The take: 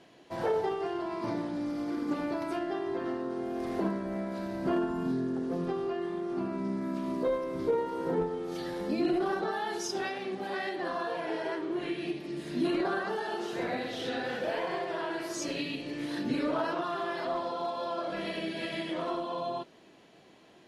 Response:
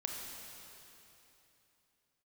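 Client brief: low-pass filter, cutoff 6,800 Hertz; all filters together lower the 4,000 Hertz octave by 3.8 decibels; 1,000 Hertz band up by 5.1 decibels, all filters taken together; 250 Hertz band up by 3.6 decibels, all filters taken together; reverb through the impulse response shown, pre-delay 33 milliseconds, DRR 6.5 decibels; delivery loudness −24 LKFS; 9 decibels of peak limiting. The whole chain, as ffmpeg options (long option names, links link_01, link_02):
-filter_complex "[0:a]lowpass=6800,equalizer=frequency=250:width_type=o:gain=4.5,equalizer=frequency=1000:width_type=o:gain=6.5,equalizer=frequency=4000:width_type=o:gain=-5,alimiter=level_in=0.5dB:limit=-24dB:level=0:latency=1,volume=-0.5dB,asplit=2[link_01][link_02];[1:a]atrim=start_sample=2205,adelay=33[link_03];[link_02][link_03]afir=irnorm=-1:irlink=0,volume=-7.5dB[link_04];[link_01][link_04]amix=inputs=2:normalize=0,volume=8.5dB"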